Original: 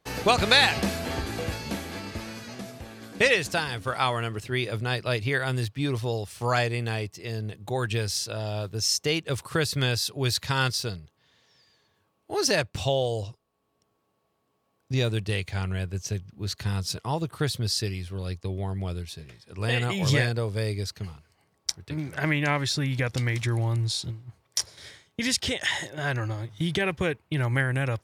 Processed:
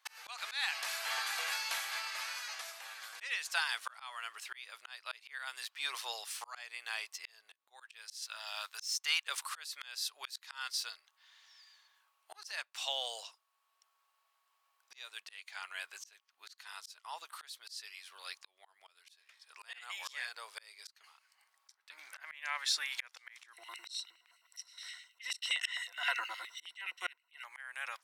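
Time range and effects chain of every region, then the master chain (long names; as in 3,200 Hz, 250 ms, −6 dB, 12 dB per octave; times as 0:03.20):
0:08.22–0:09.27: high-pass filter 850 Hz + leveller curve on the samples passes 1
0:23.53–0:27.44: EQ curve with evenly spaced ripples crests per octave 2, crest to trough 17 dB + auto-filter high-pass square 9.6 Hz 270–2,500 Hz
whole clip: high-pass filter 1,000 Hz 24 dB per octave; volume swells 731 ms; level +2 dB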